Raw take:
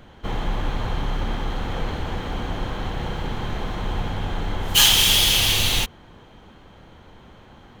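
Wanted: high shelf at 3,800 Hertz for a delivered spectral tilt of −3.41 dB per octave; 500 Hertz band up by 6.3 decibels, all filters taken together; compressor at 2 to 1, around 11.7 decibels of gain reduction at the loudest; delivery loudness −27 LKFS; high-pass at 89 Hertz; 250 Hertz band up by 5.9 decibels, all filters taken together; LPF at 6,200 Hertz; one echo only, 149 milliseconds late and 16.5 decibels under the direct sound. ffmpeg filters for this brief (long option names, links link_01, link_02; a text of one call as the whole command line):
ffmpeg -i in.wav -af "highpass=89,lowpass=6200,equalizer=frequency=250:width_type=o:gain=6.5,equalizer=frequency=500:width_type=o:gain=6,highshelf=frequency=3800:gain=-8,acompressor=threshold=-37dB:ratio=2,aecho=1:1:149:0.15,volume=6dB" out.wav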